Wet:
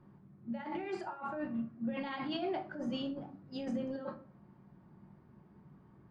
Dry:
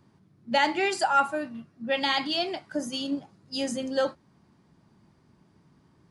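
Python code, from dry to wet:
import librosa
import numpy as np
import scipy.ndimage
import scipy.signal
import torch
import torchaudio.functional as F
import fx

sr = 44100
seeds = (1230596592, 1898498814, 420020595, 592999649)

y = scipy.signal.sosfilt(scipy.signal.butter(2, 1700.0, 'lowpass', fs=sr, output='sos'), x)
y = fx.over_compress(y, sr, threshold_db=-34.0, ratio=-1.0)
y = fx.room_shoebox(y, sr, seeds[0], volume_m3=320.0, walls='furnished', distance_m=0.97)
y = y * 10.0 ** (-6.0 / 20.0)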